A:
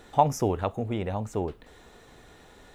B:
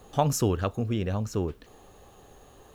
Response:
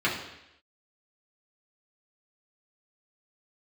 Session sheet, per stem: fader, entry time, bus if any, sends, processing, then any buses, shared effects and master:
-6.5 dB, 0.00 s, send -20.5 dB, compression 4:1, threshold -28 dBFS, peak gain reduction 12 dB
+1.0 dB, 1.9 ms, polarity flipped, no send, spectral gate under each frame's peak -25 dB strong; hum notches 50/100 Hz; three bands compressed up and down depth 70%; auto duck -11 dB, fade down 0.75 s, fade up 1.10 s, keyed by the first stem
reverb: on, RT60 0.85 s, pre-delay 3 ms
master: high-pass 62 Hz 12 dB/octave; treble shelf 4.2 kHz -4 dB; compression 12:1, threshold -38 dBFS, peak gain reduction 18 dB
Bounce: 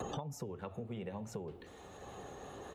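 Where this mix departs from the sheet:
stem B: polarity flipped; master: missing treble shelf 4.2 kHz -4 dB

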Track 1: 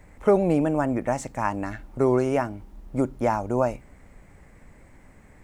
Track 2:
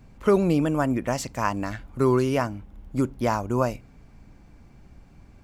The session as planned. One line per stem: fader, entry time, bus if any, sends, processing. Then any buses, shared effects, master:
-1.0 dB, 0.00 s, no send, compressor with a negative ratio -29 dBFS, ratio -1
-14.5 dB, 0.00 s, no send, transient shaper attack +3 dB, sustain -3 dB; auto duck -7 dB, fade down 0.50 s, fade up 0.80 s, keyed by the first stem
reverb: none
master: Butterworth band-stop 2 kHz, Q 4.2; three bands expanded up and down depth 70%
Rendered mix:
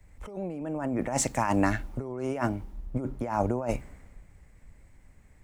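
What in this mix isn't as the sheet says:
stem 2 -14.5 dB -> -26.0 dB; master: missing Butterworth band-stop 2 kHz, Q 4.2

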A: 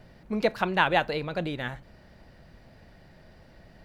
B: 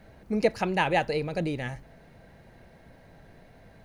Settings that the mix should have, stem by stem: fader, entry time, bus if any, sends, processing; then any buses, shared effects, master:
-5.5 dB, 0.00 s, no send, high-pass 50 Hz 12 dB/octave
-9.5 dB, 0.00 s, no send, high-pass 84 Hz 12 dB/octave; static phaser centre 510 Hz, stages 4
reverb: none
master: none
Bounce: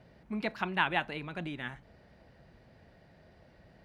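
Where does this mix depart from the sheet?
stem B: polarity flipped; master: extra treble shelf 7 kHz -11 dB

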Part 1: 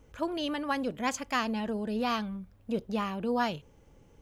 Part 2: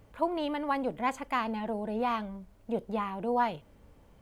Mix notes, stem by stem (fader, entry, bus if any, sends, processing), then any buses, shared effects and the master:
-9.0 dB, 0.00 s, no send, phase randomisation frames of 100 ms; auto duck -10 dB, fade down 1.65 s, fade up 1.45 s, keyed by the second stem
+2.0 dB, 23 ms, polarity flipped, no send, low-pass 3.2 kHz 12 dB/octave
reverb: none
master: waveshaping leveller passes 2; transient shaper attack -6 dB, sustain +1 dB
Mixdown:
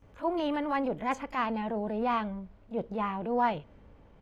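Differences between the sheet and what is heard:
stem 1: missing phase randomisation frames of 100 ms; master: missing waveshaping leveller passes 2

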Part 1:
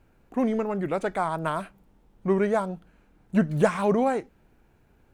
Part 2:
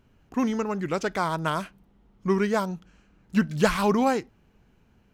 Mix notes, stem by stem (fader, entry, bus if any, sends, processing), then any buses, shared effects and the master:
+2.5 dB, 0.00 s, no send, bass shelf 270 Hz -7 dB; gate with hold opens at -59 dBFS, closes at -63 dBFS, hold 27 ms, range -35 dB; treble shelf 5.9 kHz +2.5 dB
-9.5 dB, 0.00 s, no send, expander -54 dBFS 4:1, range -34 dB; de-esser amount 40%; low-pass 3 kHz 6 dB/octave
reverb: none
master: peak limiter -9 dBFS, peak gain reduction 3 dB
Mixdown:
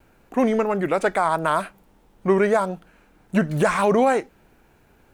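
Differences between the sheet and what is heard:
stem 1 +2.5 dB -> +8.5 dB; stem 2: polarity flipped

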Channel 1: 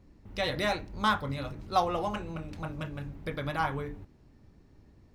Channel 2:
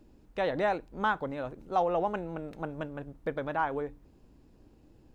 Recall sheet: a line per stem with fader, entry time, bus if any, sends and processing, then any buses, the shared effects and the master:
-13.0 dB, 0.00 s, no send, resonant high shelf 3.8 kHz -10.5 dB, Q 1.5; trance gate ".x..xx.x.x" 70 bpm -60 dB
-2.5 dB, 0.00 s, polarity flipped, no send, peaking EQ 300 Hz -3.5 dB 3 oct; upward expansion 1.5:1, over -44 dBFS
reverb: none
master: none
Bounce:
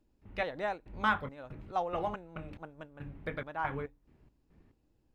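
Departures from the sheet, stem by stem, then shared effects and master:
stem 1 -13.0 dB -> -4.5 dB; stem 2: polarity flipped

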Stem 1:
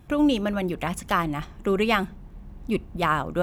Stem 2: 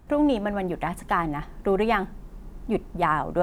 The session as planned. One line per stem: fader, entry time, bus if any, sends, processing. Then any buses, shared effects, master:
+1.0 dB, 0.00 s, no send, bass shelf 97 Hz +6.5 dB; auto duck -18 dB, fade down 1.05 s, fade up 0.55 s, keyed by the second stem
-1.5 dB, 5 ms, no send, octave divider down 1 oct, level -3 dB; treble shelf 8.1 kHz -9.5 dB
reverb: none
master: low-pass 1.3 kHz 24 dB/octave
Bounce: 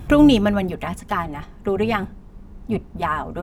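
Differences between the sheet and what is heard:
stem 1 +1.0 dB -> +12.5 dB; master: missing low-pass 1.3 kHz 24 dB/octave

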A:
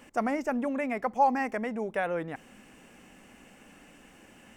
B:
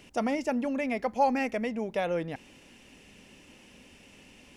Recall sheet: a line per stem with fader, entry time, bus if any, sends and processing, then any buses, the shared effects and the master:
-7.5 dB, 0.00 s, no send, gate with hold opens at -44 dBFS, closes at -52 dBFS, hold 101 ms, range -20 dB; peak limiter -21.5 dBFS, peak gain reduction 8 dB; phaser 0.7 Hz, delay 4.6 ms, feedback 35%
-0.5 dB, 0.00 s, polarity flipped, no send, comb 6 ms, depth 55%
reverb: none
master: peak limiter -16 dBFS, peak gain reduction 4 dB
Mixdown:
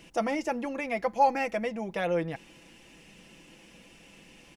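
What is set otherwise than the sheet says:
stem A -7.5 dB -> -14.0 dB; master: missing peak limiter -16 dBFS, peak gain reduction 4 dB

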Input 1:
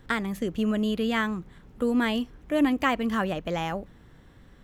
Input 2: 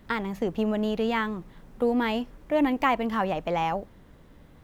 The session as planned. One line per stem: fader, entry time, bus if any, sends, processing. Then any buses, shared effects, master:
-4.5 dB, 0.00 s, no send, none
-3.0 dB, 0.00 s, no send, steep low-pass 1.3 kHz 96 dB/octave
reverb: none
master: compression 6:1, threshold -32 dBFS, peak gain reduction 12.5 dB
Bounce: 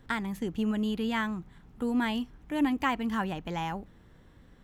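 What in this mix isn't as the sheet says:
stem 2 -3.0 dB -> -11.5 dB; master: missing compression 6:1, threshold -32 dBFS, peak gain reduction 12.5 dB

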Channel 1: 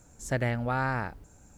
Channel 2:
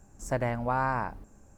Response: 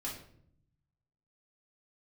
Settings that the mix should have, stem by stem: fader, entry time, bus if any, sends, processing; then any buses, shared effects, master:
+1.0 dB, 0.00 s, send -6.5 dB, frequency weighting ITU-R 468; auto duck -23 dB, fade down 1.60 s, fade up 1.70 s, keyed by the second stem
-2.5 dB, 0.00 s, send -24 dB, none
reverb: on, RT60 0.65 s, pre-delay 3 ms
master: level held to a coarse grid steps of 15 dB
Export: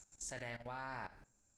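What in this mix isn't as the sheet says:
stem 1 +1.0 dB -> -10.0 dB; stem 2 -2.5 dB -> -14.0 dB

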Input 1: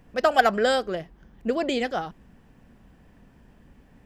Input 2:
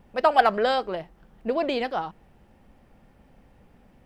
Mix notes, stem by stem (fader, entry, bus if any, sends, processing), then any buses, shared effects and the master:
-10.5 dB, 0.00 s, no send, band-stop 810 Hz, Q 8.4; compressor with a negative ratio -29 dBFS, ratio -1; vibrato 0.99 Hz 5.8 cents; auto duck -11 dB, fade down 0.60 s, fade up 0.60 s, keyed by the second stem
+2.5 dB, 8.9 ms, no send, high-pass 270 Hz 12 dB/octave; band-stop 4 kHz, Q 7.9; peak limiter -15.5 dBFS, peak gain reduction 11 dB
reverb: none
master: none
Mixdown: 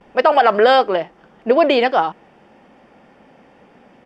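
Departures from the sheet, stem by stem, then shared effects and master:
stem 2 +2.5 dB -> +12.5 dB; master: extra low-pass 5.2 kHz 12 dB/octave

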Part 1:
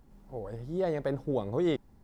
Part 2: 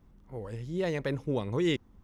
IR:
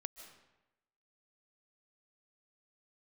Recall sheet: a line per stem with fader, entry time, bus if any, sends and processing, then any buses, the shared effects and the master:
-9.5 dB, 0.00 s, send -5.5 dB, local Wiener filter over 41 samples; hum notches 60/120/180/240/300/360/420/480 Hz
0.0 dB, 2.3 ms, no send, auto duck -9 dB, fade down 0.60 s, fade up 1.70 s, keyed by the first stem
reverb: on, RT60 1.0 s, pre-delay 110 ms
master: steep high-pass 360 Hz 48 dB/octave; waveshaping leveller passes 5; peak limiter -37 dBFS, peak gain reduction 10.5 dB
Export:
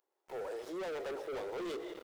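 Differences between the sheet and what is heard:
stem 1: missing local Wiener filter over 41 samples; stem 2 0.0 dB -> -10.0 dB

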